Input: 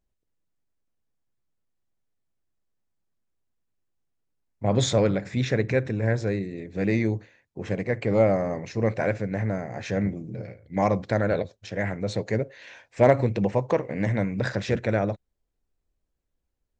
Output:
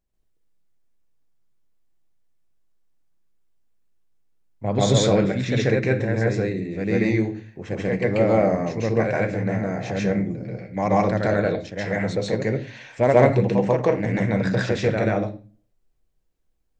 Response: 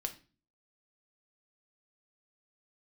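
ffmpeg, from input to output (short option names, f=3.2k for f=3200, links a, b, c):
-filter_complex "[0:a]asplit=2[a][b];[1:a]atrim=start_sample=2205,adelay=137[c];[b][c]afir=irnorm=-1:irlink=0,volume=4.5dB[d];[a][d]amix=inputs=2:normalize=0,volume=-1.5dB"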